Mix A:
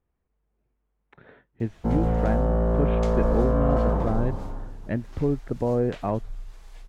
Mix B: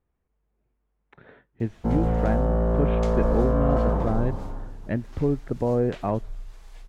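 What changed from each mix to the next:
speech: send on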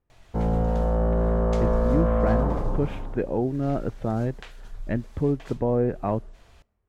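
background: entry -1.50 s

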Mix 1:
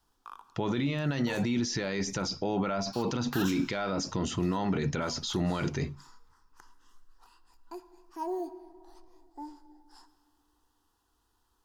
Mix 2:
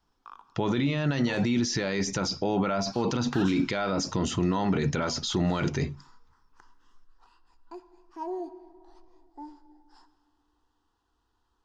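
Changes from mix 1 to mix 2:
speech +3.5 dB; background: add air absorption 100 m

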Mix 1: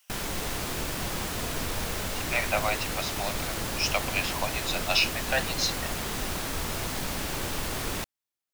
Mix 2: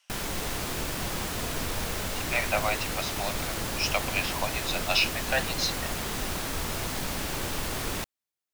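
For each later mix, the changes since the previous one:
speech: add LPF 6500 Hz 12 dB/oct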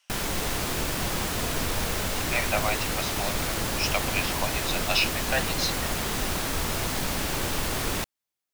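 background +3.5 dB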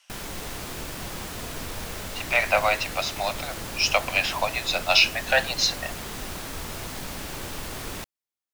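speech +6.5 dB; background -6.5 dB

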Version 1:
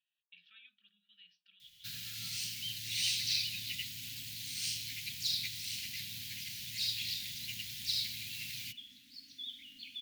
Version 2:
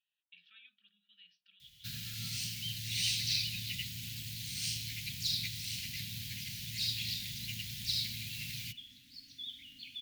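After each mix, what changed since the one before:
first sound: add low shelf 350 Hz +10.5 dB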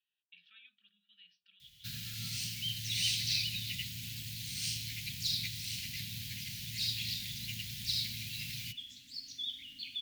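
second sound: remove air absorption 210 m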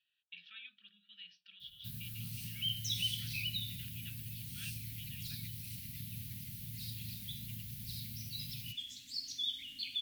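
speech +7.5 dB; first sound: add band shelf 3100 Hz -15 dB 3 oct; second sound: add high shelf 6800 Hz +11.5 dB

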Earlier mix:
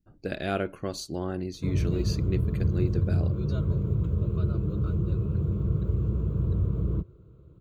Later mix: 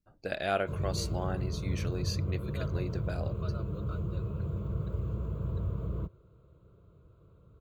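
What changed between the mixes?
background: entry -0.95 s; master: add resonant low shelf 460 Hz -7 dB, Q 1.5

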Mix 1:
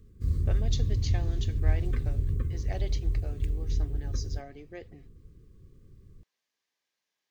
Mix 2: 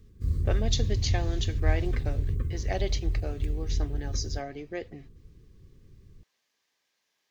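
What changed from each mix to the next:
speech +8.0 dB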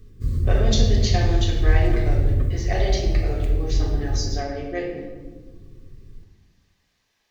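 background +5.0 dB; reverb: on, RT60 1.4 s

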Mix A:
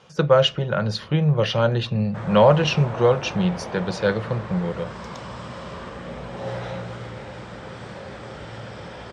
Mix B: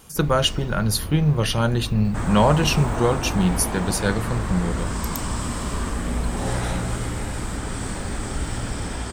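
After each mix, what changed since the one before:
first sound +11.0 dB; second sound +5.0 dB; master: remove speaker cabinet 120–4900 Hz, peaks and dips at 130 Hz +4 dB, 270 Hz -10 dB, 540 Hz +9 dB, 4500 Hz -3 dB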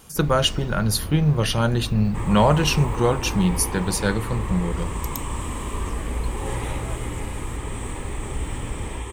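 second sound: add fixed phaser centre 990 Hz, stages 8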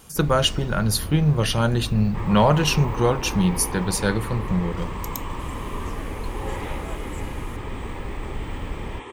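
second sound: add BPF 230–3600 Hz

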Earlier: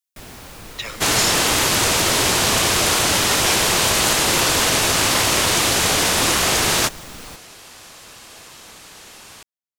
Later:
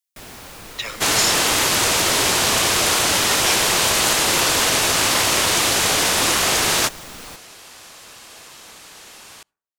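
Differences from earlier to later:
speech: send +7.5 dB; first sound: send on; master: add low shelf 250 Hz -5.5 dB

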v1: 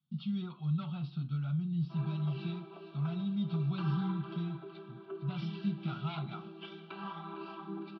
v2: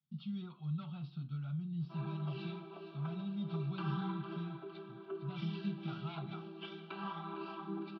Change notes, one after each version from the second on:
speech -6.0 dB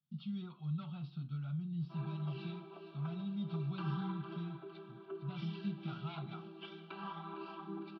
background: send -8.5 dB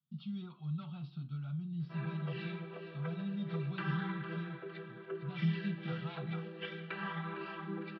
background: remove fixed phaser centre 500 Hz, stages 6

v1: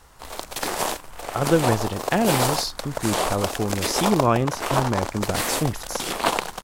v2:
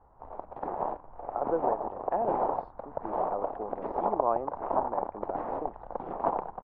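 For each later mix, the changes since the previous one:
speech: add HPF 460 Hz 12 dB/oct; master: add ladder low-pass 1000 Hz, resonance 45%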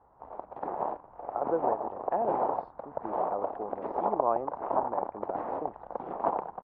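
background: add HPF 140 Hz 6 dB/oct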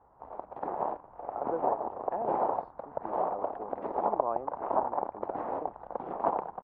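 speech -5.0 dB

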